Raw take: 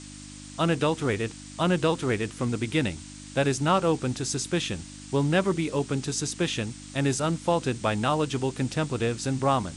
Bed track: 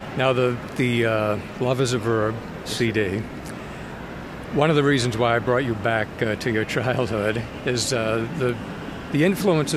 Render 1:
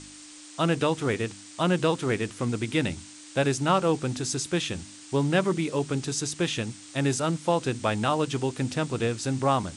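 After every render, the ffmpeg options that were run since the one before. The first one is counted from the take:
-af "bandreject=f=50:t=h:w=4,bandreject=f=100:t=h:w=4,bandreject=f=150:t=h:w=4,bandreject=f=200:t=h:w=4,bandreject=f=250:t=h:w=4"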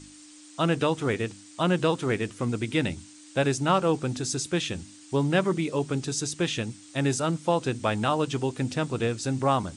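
-af "afftdn=nr=6:nf=-46"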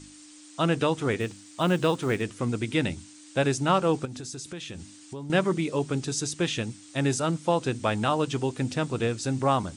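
-filter_complex "[0:a]asettb=1/sr,asplit=3[s0][s1][s2];[s0]atrim=end=1.204[s3];[s1]atrim=start=1.2:end=2.22,asetpts=PTS-STARTPTS,afade=t=in:d=0.004:c=qsin,afade=t=out:st=1.016:d=0.004:c=qsin,acrusher=bits=8:mode=log:mix=0:aa=0.000001[s4];[s2]atrim=start=2.216[s5];[s3][s4]acrossfade=d=0.004:c1=hsin:c2=qsin[s6];[s6][s5]acrossfade=d=0.004:c1=qsin:c2=hsin,asettb=1/sr,asplit=3[s7][s8][s9];[s7]atrim=end=4.054[s10];[s8]atrim=start=4.05:end=5.3,asetpts=PTS-STARTPTS,afade=t=in:d=0.004:c=qsin,afade=t=out:st=1.246:d=0.004:c=qsin,acompressor=threshold=0.0178:ratio=5:attack=3.2:release=140:knee=1:detection=peak[s11];[s9]atrim=start=5.296[s12];[s10][s11]acrossfade=d=0.004:c1=hsin:c2=qsin[s13];[s13][s12]acrossfade=d=0.004:c1=qsin:c2=hsin"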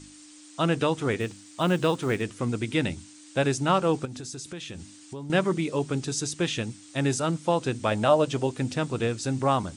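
-filter_complex "[0:a]asettb=1/sr,asplit=3[s0][s1][s2];[s0]atrim=end=7.914[s3];[s1]atrim=start=7.91:end=8.47,asetpts=PTS-STARTPTS,afade=t=in:d=0.004:c=qsin,afade=t=out:st=0.556:d=0.004:c=qsin,equalizer=f=590:w=4.2:g=12[s4];[s2]atrim=start=8.466[s5];[s3][s4]acrossfade=d=0.004:c1=hsin:c2=qsin[s6];[s6][s5]acrossfade=d=0.004:c1=qsin:c2=hsin"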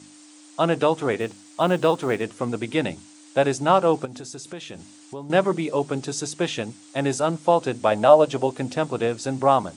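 -af "highpass=130,equalizer=f=700:w=1:g=8.5"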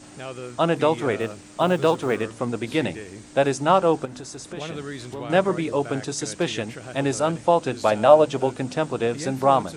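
-filter_complex "[1:a]volume=0.168[s0];[0:a][s0]amix=inputs=2:normalize=0"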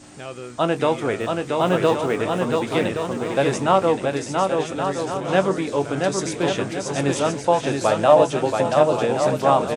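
-filter_complex "[0:a]asplit=2[s0][s1];[s1]adelay=21,volume=0.237[s2];[s0][s2]amix=inputs=2:normalize=0,aecho=1:1:680|1122|1409|1596|1717:0.631|0.398|0.251|0.158|0.1"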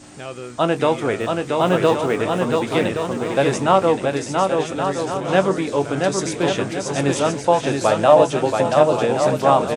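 -af "volume=1.26,alimiter=limit=0.891:level=0:latency=1"

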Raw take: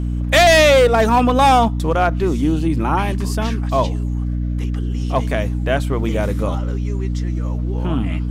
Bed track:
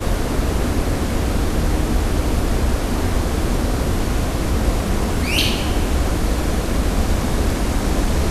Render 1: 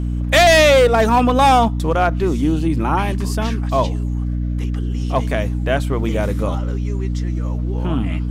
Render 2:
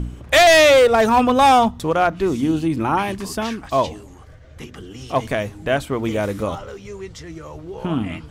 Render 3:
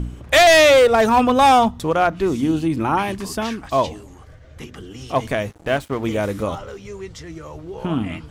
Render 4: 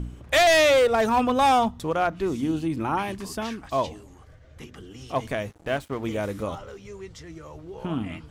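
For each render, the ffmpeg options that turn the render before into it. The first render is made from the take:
-af anull
-af "bandreject=f=60:t=h:w=4,bandreject=f=120:t=h:w=4,bandreject=f=180:t=h:w=4,bandreject=f=240:t=h:w=4,bandreject=f=300:t=h:w=4"
-filter_complex "[0:a]asettb=1/sr,asplit=3[s0][s1][s2];[s0]atrim=end=5.514[s3];[s1]atrim=start=5.51:end=6.04,asetpts=PTS-STARTPTS,afade=t=in:d=0.004:c=qsin,afade=t=out:st=0.526:d=0.004:c=qsin,aeval=exprs='sgn(val(0))*max(abs(val(0))-0.0158,0)':c=same[s4];[s2]atrim=start=6.036[s5];[s3][s4]acrossfade=d=0.004:c1=hsin:c2=qsin[s6];[s6][s5]acrossfade=d=0.004:c1=qsin:c2=hsin"
-af "volume=0.473"

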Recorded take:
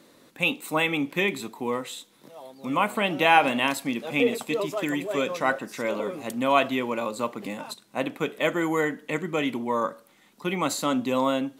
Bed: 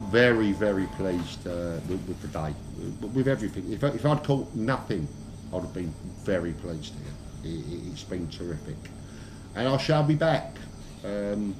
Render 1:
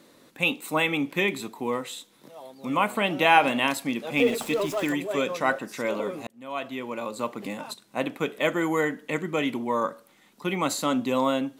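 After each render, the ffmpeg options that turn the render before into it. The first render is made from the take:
-filter_complex "[0:a]asettb=1/sr,asplit=3[s0][s1][s2];[s0]atrim=end=4.174[s3];[s1]atrim=start=4.17:end=4.93,asetpts=PTS-STARTPTS,afade=t=in:d=0.004:c=qsin,afade=t=out:st=0.756:d=0.004:c=qsin,aeval=exprs='val(0)+0.5*0.0168*sgn(val(0))':c=same[s4];[s2]atrim=start=4.926[s5];[s3][s4]acrossfade=d=0.004:c1=hsin:c2=qsin[s6];[s6][s5]acrossfade=d=0.004:c1=qsin:c2=hsin,asplit=2[s7][s8];[s7]atrim=end=6.27,asetpts=PTS-STARTPTS,afade=t=out:st=6.266:d=0.004:c=hsin[s9];[s8]atrim=start=6.27,asetpts=PTS-STARTPTS,afade=t=in:d=1.14[s10];[s9][s10]concat=n=2:v=0:a=1"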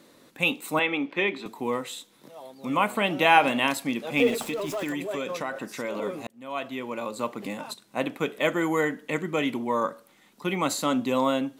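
-filter_complex "[0:a]asettb=1/sr,asplit=3[s0][s1][s2];[s0]atrim=end=0.794[s3];[s1]atrim=start=0.79:end=1.46,asetpts=PTS-STARTPTS,afade=t=in:d=0.004:c=qsin,afade=t=out:st=0.666:d=0.004:c=qsin,acrossover=split=200 4500:gain=0.0708 1 0.0631[s4][s5][s6];[s4][s5][s6]amix=inputs=3:normalize=0[s7];[s2]atrim=start=1.456[s8];[s3][s7]acrossfade=d=0.004:c1=hsin:c2=qsin[s9];[s9][s8]acrossfade=d=0.004:c1=qsin:c2=hsin,asettb=1/sr,asplit=3[s10][s11][s12];[s10]atrim=end=4.474[s13];[s11]atrim=start=4.47:end=6.02,asetpts=PTS-STARTPTS,afade=t=in:d=0.004:c=qsin,afade=t=out:st=1.546:d=0.004:c=qsin,acompressor=threshold=0.0501:ratio=6:attack=3.2:release=140:knee=1:detection=peak[s14];[s12]atrim=start=6.016[s15];[s13][s14]acrossfade=d=0.004:c1=hsin:c2=qsin[s16];[s16][s15]acrossfade=d=0.004:c1=qsin:c2=hsin"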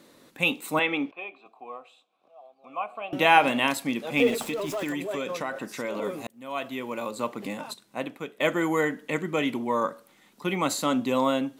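-filter_complex "[0:a]asettb=1/sr,asplit=3[s0][s1][s2];[s0]atrim=end=1.114[s3];[s1]atrim=start=1.11:end=3.13,asetpts=PTS-STARTPTS,afade=t=in:d=0.004:c=qsin,afade=t=out:st=2.016:d=0.004:c=qsin,asplit=3[s4][s5][s6];[s4]bandpass=f=730:t=q:w=8,volume=1[s7];[s5]bandpass=f=1090:t=q:w=8,volume=0.501[s8];[s6]bandpass=f=2440:t=q:w=8,volume=0.355[s9];[s7][s8][s9]amix=inputs=3:normalize=0[s10];[s2]atrim=start=3.126[s11];[s3][s10]acrossfade=d=0.004:c1=hsin:c2=qsin[s12];[s12][s11]acrossfade=d=0.004:c1=qsin:c2=hsin,asettb=1/sr,asplit=3[s13][s14][s15];[s13]atrim=end=6.044[s16];[s14]atrim=start=6.04:end=7.11,asetpts=PTS-STARTPTS,afade=t=in:d=0.004:c=qsin,afade=t=out:st=1.066:d=0.004:c=qsin,highshelf=f=9400:g=8[s17];[s15]atrim=start=7.106[s18];[s16][s17]acrossfade=d=0.004:c1=hsin:c2=qsin[s19];[s19][s18]acrossfade=d=0.004:c1=qsin:c2=hsin,asplit=2[s20][s21];[s20]atrim=end=8.4,asetpts=PTS-STARTPTS,afade=t=out:st=7.63:d=0.77:silence=0.223872[s22];[s21]atrim=start=8.4,asetpts=PTS-STARTPTS,afade=t=in:d=0.004:c=hsin:silence=0.223872[s23];[s22][s23]concat=n=2:v=0:a=1"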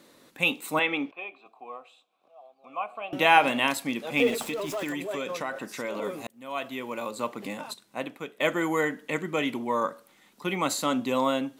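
-af "lowshelf=f=470:g=-3"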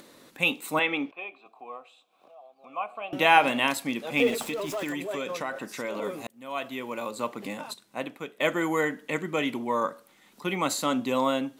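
-af "acompressor=mode=upward:threshold=0.00447:ratio=2.5"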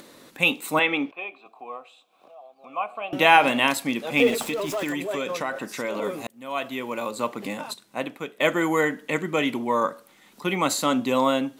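-af "volume=1.58,alimiter=limit=0.708:level=0:latency=1"

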